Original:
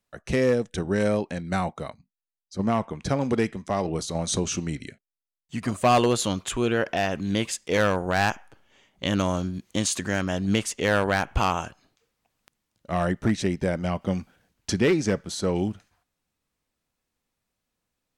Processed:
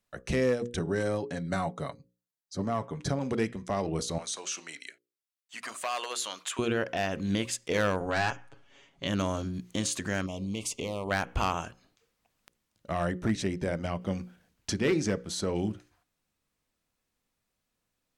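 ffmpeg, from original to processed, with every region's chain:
ffmpeg -i in.wav -filter_complex "[0:a]asettb=1/sr,asplit=3[link_01][link_02][link_03];[link_01]atrim=end=0.794[link_04];[link_02]atrim=start=0.79:end=3.19,asetpts=PTS-STARTPTS,afade=type=in:duration=0.004:curve=qsin,afade=type=out:start_time=2.396:duration=0.004:curve=qsin,highpass=41,equalizer=frequency=2500:width=3.5:gain=-7,aecho=1:1:7.1:0.5,atrim=end_sample=105840[link_05];[link_03]atrim=start=3.186[link_06];[link_04][link_05]acrossfade=duration=0.004:curve1=hsin:curve2=qsin[link_07];[link_07][link_06]acrossfade=duration=0.004:curve1=qsin:curve2=hsin,asettb=1/sr,asplit=3[link_08][link_09][link_10];[link_08]atrim=end=4.184[link_11];[link_09]atrim=start=4.18:end=6.59,asetpts=PTS-STARTPTS,afade=type=in:duration=0.004:curve=qsin,afade=type=out:start_time=2.406:duration=0.004:curve=qsin,highpass=920,acompressor=threshold=-32dB:ratio=2:attack=3.2:release=140:knee=1:detection=peak[link_12];[link_10]atrim=start=6.586[link_13];[link_11][link_12]acrossfade=duration=0.004:curve1=hsin:curve2=qsin[link_14];[link_14][link_13]acrossfade=duration=0.004:curve1=qsin:curve2=hsin,asettb=1/sr,asplit=3[link_15][link_16][link_17];[link_15]atrim=end=8.004[link_18];[link_16]atrim=start=8:end=9.07,asetpts=PTS-STARTPTS,afade=type=in:duration=0.004:curve=qsin,afade=type=out:start_time=1.066:duration=0.004:curve=qsin,lowpass=8100,aecho=1:1:7.2:0.64,atrim=end_sample=47187[link_19];[link_17]atrim=start=9.066[link_20];[link_18][link_19]acrossfade=duration=0.004:curve1=hsin:curve2=qsin[link_21];[link_21][link_20]acrossfade=duration=0.004:curve1=qsin:curve2=hsin,asettb=1/sr,asplit=3[link_22][link_23][link_24];[link_22]atrim=end=10.264[link_25];[link_23]atrim=start=10.26:end=11.11,asetpts=PTS-STARTPTS,afade=type=in:duration=0.004:curve=qsin,afade=type=out:start_time=0.846:duration=0.004:curve=qsin,acompressor=threshold=-28dB:ratio=10:attack=3.2:release=140:knee=1:detection=peak,asuperstop=centerf=1600:order=8:qfactor=1.6[link_26];[link_24]atrim=start=11.106[link_27];[link_25][link_26]acrossfade=duration=0.004:curve1=hsin:curve2=qsin[link_28];[link_28][link_27]acrossfade=duration=0.004:curve1=qsin:curve2=hsin,equalizer=frequency=830:width_type=o:width=0.33:gain=-2,alimiter=limit=-18.5dB:level=0:latency=1:release=433,bandreject=frequency=60:width_type=h:width=6,bandreject=frequency=120:width_type=h:width=6,bandreject=frequency=180:width_type=h:width=6,bandreject=frequency=240:width_type=h:width=6,bandreject=frequency=300:width_type=h:width=6,bandreject=frequency=360:width_type=h:width=6,bandreject=frequency=420:width_type=h:width=6,bandreject=frequency=480:width_type=h:width=6,bandreject=frequency=540:width_type=h:width=6" out.wav

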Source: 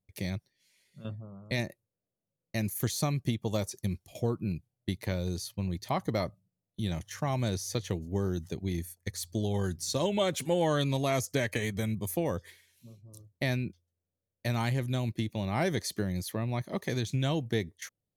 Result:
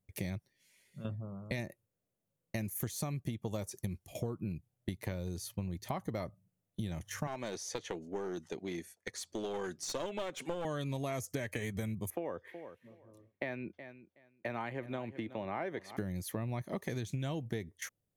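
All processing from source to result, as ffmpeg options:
ffmpeg -i in.wav -filter_complex "[0:a]asettb=1/sr,asplit=3[link_01][link_02][link_03];[link_01]atrim=end=7.274[link_04];[link_02]atrim=start=7.27:end=10.65,asetpts=PTS-STARTPTS,afade=type=in:duration=0.004:curve=qsin,afade=type=out:start_time=3.376:duration=0.004:curve=qsin,highpass=350,lowpass=5900,aeval=exprs='clip(val(0),-1,0.02)':channel_layout=same[link_05];[link_03]atrim=start=10.646[link_06];[link_04][link_05]acrossfade=duration=0.004:curve1=hsin:curve2=qsin[link_07];[link_07][link_06]acrossfade=duration=0.004:curve1=qsin:curve2=hsin,asettb=1/sr,asplit=3[link_08][link_09][link_10];[link_08]atrim=end=12.104[link_11];[link_09]atrim=start=12.1:end=15.97,asetpts=PTS-STARTPTS,afade=type=in:duration=0.004:curve=qsin,afade=type=out:start_time=3.866:duration=0.004:curve=qsin,acrossover=split=270 2900:gain=0.141 1 0.0708[link_12][link_13][link_14];[link_12][link_13][link_14]amix=inputs=3:normalize=0,aecho=1:1:371|742:0.126|0.0214,atrim=end_sample=170667[link_15];[link_10]atrim=start=15.966[link_16];[link_11][link_15]acrossfade=duration=0.004:curve1=hsin:curve2=qsin[link_17];[link_17][link_16]acrossfade=duration=0.004:curve1=qsin:curve2=hsin,equalizer=frequency=4300:width=1.6:gain=-6.5,acompressor=threshold=-37dB:ratio=6,volume=2.5dB" out.wav

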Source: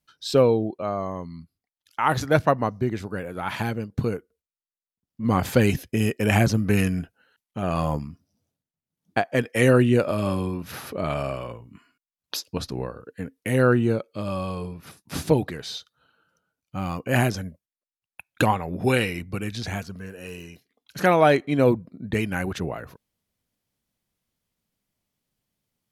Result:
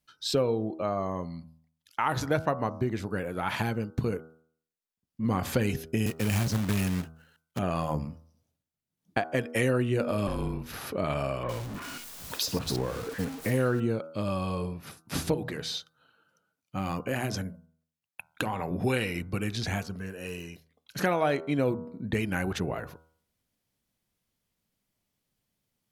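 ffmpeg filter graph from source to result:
ffmpeg -i in.wav -filter_complex "[0:a]asettb=1/sr,asplit=3[link_01][link_02][link_03];[link_01]atrim=end=6.064[link_04];[link_02]atrim=start=6.06:end=7.59,asetpts=PTS-STARTPTS,afade=type=in:duration=0.004:curve=qsin,afade=type=out:start_time=1.526:duration=0.004:curve=qsin,acrossover=split=260|3000[link_05][link_06][link_07];[link_06]acompressor=threshold=-30dB:ratio=10:attack=3.2:release=140:knee=2.83:detection=peak[link_08];[link_05][link_08][link_07]amix=inputs=3:normalize=0,acrusher=bits=2:mode=log:mix=0:aa=0.000001[link_09];[link_03]atrim=start=7.586[link_10];[link_04][link_09]acrossfade=duration=0.004:curve1=hsin:curve2=qsin[link_11];[link_11][link_10]acrossfade=duration=0.004:curve1=qsin:curve2=hsin,asettb=1/sr,asplit=3[link_12][link_13][link_14];[link_12]atrim=end=10.274[link_15];[link_13]atrim=start=10.27:end=10.81,asetpts=PTS-STARTPTS,afade=type=in:duration=0.004:curve=qsin,afade=type=out:start_time=0.536:duration=0.004:curve=qsin,afreqshift=-31,aeval=exprs='(tanh(10*val(0)+0.65)-tanh(0.65))/10':channel_layout=same[link_16];[link_14]atrim=start=10.806[link_17];[link_15][link_16]acrossfade=duration=0.004:curve1=hsin:curve2=qsin[link_18];[link_18][link_17]acrossfade=duration=0.004:curve1=qsin:curve2=hsin,asettb=1/sr,asplit=3[link_19][link_20][link_21];[link_19]atrim=end=11.434[link_22];[link_20]atrim=start=11.43:end=13.8,asetpts=PTS-STARTPTS,afade=type=in:duration=0.004:curve=qsin,afade=type=out:start_time=2.366:duration=0.004:curve=qsin,aeval=exprs='val(0)+0.5*0.0237*sgn(val(0))':channel_layout=same,acrossover=split=2300[link_23][link_24];[link_24]adelay=60[link_25];[link_23][link_25]amix=inputs=2:normalize=0,atrim=end_sample=104517[link_26];[link_21]atrim=start=13.796[link_27];[link_22][link_26]acrossfade=duration=0.004:curve1=hsin:curve2=qsin[link_28];[link_28][link_27]acrossfade=duration=0.004:curve1=qsin:curve2=hsin,asettb=1/sr,asplit=3[link_29][link_30][link_31];[link_29]atrim=end=15.344[link_32];[link_30]atrim=start=15.34:end=18.71,asetpts=PTS-STARTPTS,afade=type=in:duration=0.004:curve=qsin,afade=type=out:start_time=3.366:duration=0.004:curve=qsin,highpass=91,bandreject=frequency=60:width_type=h:width=6,bandreject=frequency=120:width_type=h:width=6,bandreject=frequency=180:width_type=h:width=6,acompressor=threshold=-24dB:ratio=6:attack=3.2:release=140:knee=1:detection=peak[link_33];[link_31]atrim=start=18.706[link_34];[link_32][link_33]acrossfade=duration=0.004:curve1=hsin:curve2=qsin[link_35];[link_35][link_34]acrossfade=duration=0.004:curve1=qsin:curve2=hsin,bandreject=frequency=80.31:width_type=h:width=4,bandreject=frequency=160.62:width_type=h:width=4,bandreject=frequency=240.93:width_type=h:width=4,bandreject=frequency=321.24:width_type=h:width=4,bandreject=frequency=401.55:width_type=h:width=4,bandreject=frequency=481.86:width_type=h:width=4,bandreject=frequency=562.17:width_type=h:width=4,bandreject=frequency=642.48:width_type=h:width=4,bandreject=frequency=722.79:width_type=h:width=4,bandreject=frequency=803.1:width_type=h:width=4,bandreject=frequency=883.41:width_type=h:width=4,bandreject=frequency=963.72:width_type=h:width=4,bandreject=frequency=1044.03:width_type=h:width=4,bandreject=frequency=1124.34:width_type=h:width=4,bandreject=frequency=1204.65:width_type=h:width=4,bandreject=frequency=1284.96:width_type=h:width=4,bandreject=frequency=1365.27:width_type=h:width=4,bandreject=frequency=1445.58:width_type=h:width=4,bandreject=frequency=1525.89:width_type=h:width=4,acompressor=threshold=-25dB:ratio=3" out.wav

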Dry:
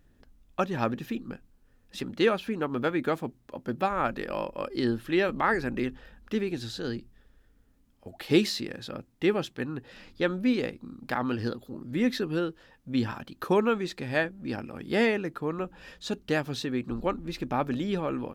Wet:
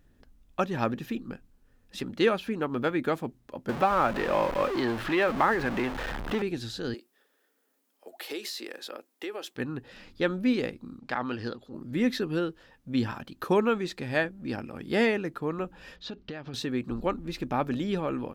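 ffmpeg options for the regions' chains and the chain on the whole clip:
ffmpeg -i in.wav -filter_complex "[0:a]asettb=1/sr,asplit=3[link_01][link_02][link_03];[link_01]atrim=end=3.694[link_04];[link_02]atrim=start=3.69:end=6.42,asetpts=PTS-STARTPTS,afade=type=in:duration=0.004:curve=qsin,afade=type=out:start_time=2.726:duration=0.004:curve=qsin,aeval=exprs='val(0)+0.5*0.0316*sgn(val(0))':channel_layout=same,acrossover=split=490|4500[link_05][link_06][link_07];[link_05]acompressor=threshold=-31dB:ratio=4[link_08];[link_06]acompressor=threshold=-26dB:ratio=4[link_09];[link_07]acompressor=threshold=-56dB:ratio=4[link_10];[link_08][link_09][link_10]amix=inputs=3:normalize=0,equalizer=frequency=920:width_type=o:width=2:gain=6[link_11];[link_03]atrim=start=6.416[link_12];[link_04][link_11]acrossfade=duration=0.004:curve1=hsin:curve2=qsin[link_13];[link_13][link_12]acrossfade=duration=0.004:curve1=qsin:curve2=hsin,asettb=1/sr,asplit=3[link_14][link_15][link_16];[link_14]atrim=end=6.944[link_17];[link_15]atrim=start=6.94:end=9.56,asetpts=PTS-STARTPTS,afade=type=in:duration=0.004:curve=qsin,afade=type=out:start_time=2.616:duration=0.004:curve=qsin,highpass=frequency=350:width=0.5412,highpass=frequency=350:width=1.3066,highshelf=frequency=10000:gain=11,acompressor=threshold=-33dB:ratio=5:attack=3.2:release=140:knee=1:detection=peak[link_18];[link_16]atrim=start=9.556[link_19];[link_17][link_18]acrossfade=duration=0.004:curve1=hsin:curve2=qsin[link_20];[link_20][link_19]acrossfade=duration=0.004:curve1=qsin:curve2=hsin,asettb=1/sr,asplit=3[link_21][link_22][link_23];[link_21]atrim=end=10.994[link_24];[link_22]atrim=start=10.99:end=11.74,asetpts=PTS-STARTPTS,afade=type=in:duration=0.004:curve=qsin,afade=type=out:start_time=0.746:duration=0.004:curve=qsin,lowpass=6100,lowshelf=frequency=390:gain=-6,acompressor=mode=upward:threshold=-53dB:ratio=2.5:attack=3.2:release=140:knee=2.83:detection=peak[link_25];[link_23]atrim=start=11.736[link_26];[link_24][link_25]acrossfade=duration=0.004:curve1=hsin:curve2=qsin[link_27];[link_27][link_26]acrossfade=duration=0.004:curve1=qsin:curve2=hsin,asettb=1/sr,asplit=3[link_28][link_29][link_30];[link_28]atrim=end=15.964[link_31];[link_29]atrim=start=15.96:end=16.54,asetpts=PTS-STARTPTS,afade=type=in:duration=0.004:curve=qsin,afade=type=out:start_time=0.576:duration=0.004:curve=qsin,lowpass=frequency=4800:width=0.5412,lowpass=frequency=4800:width=1.3066,acompressor=threshold=-34dB:ratio=8:attack=3.2:release=140:knee=1:detection=peak[link_32];[link_30]atrim=start=16.536[link_33];[link_31][link_32]acrossfade=duration=0.004:curve1=hsin:curve2=qsin[link_34];[link_34][link_33]acrossfade=duration=0.004:curve1=qsin:curve2=hsin" out.wav

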